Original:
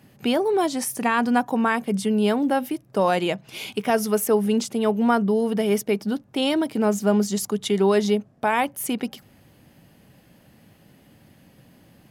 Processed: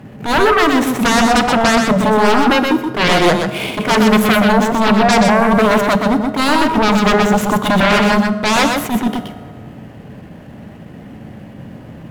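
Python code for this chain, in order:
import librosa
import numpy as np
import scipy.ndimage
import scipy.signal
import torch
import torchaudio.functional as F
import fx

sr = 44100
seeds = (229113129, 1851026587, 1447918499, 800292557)

y = scipy.signal.medfilt(x, 9)
y = fx.high_shelf(y, sr, hz=2000.0, db=-6.5)
y = fx.fold_sine(y, sr, drive_db=14, ceiling_db=-10.0)
y = y + 10.0 ** (-4.5 / 20.0) * np.pad(y, (int(125 * sr / 1000.0), 0))[:len(y)]
y = fx.rev_fdn(y, sr, rt60_s=1.8, lf_ratio=1.05, hf_ratio=0.55, size_ms=14.0, drr_db=10.5)
y = fx.attack_slew(y, sr, db_per_s=170.0)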